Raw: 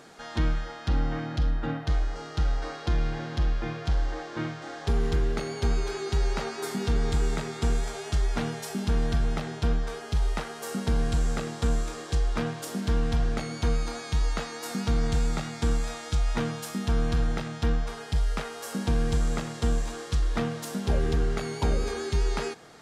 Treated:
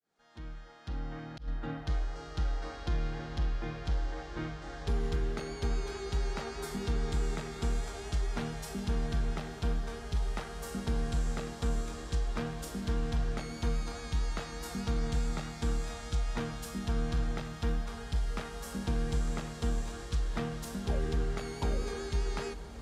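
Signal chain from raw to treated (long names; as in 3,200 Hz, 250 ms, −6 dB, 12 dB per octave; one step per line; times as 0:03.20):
fade in at the beginning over 1.86 s
feedback delay with all-pass diffusion 1,023 ms, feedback 66%, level −14 dB
0:00.99–0:01.48: volume swells 173 ms
level −6.5 dB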